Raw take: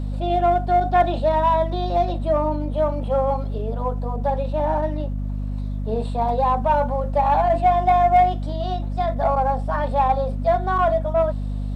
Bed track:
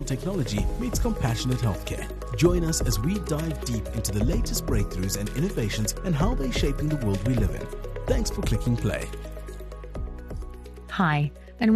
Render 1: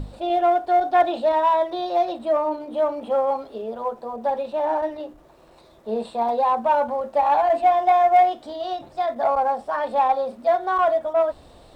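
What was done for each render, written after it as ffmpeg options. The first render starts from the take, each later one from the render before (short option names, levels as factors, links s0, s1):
-af "bandreject=f=50:t=h:w=6,bandreject=f=100:t=h:w=6,bandreject=f=150:t=h:w=6,bandreject=f=200:t=h:w=6,bandreject=f=250:t=h:w=6,bandreject=f=300:t=h:w=6"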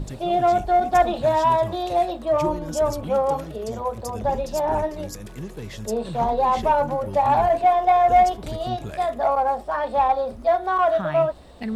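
-filter_complex "[1:a]volume=0.376[s0];[0:a][s0]amix=inputs=2:normalize=0"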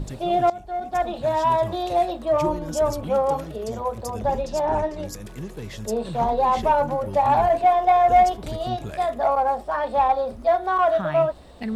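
-filter_complex "[0:a]asettb=1/sr,asplit=3[s0][s1][s2];[s0]atrim=end=4.424[s3];[s1]atrim=start=4.42:end=5.05,asetpts=PTS-STARTPTS,afade=t=in:d=0.004:c=qsin,afade=t=out:st=0.626:d=0.004:c=qsin,lowpass=8000[s4];[s2]atrim=start=5.046[s5];[s3][s4]acrossfade=d=0.004:c1=hsin:c2=qsin[s6];[s6][s5]acrossfade=d=0.004:c1=qsin:c2=hsin,asplit=2[s7][s8];[s7]atrim=end=0.5,asetpts=PTS-STARTPTS,afade=t=out:st=0.496:d=0.004:c=hsin:silence=0.125893[s9];[s8]atrim=start=0.5,asetpts=PTS-STARTPTS,afade=t=in:d=1.2:silence=0.125893[s10];[s9][s10]concat=n=2:v=0:a=1"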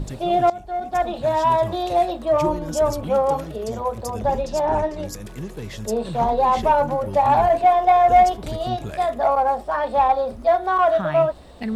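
-af "volume=1.26"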